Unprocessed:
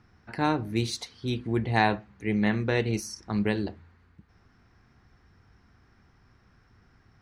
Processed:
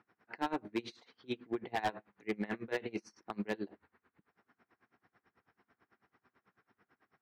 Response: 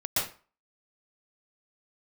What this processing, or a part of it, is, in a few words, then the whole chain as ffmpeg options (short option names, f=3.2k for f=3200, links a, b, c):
helicopter radio: -af "highpass=310,lowpass=2.7k,aeval=exprs='val(0)*pow(10,-26*(0.5-0.5*cos(2*PI*9.1*n/s))/20)':c=same,asoftclip=type=hard:threshold=-27dB"